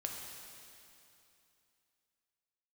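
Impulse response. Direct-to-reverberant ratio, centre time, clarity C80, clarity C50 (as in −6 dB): 0.5 dB, 98 ms, 3.0 dB, 2.0 dB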